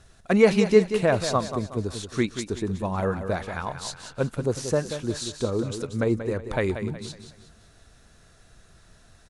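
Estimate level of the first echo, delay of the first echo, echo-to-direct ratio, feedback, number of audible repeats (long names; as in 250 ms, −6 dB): −9.5 dB, 184 ms, −9.0 dB, 38%, 4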